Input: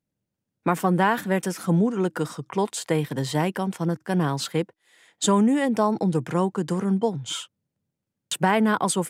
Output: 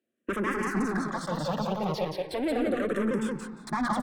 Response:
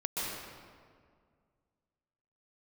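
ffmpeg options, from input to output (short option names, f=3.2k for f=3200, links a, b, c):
-filter_complex "[0:a]highpass=f=94:w=0.5412,highpass=f=94:w=1.3066,atempo=2,equalizer=f=820:w=1.8:g=-5.5,bandreject=f=1.9k:w=9.9,asplit=2[a][b];[b]highpass=f=720:p=1,volume=28dB,asoftclip=type=tanh:threshold=-10.5dB[c];[a][c]amix=inputs=2:normalize=0,lowpass=f=1.2k:p=1,volume=-6dB,asetrate=49833,aresample=44100,aecho=1:1:176|352|528:0.708|0.113|0.0181,asplit=2[d][e];[1:a]atrim=start_sample=2205,lowpass=3.4k[f];[e][f]afir=irnorm=-1:irlink=0,volume=-16.5dB[g];[d][g]amix=inputs=2:normalize=0,asplit=2[h][i];[i]afreqshift=-0.37[j];[h][j]amix=inputs=2:normalize=1,volume=-8.5dB"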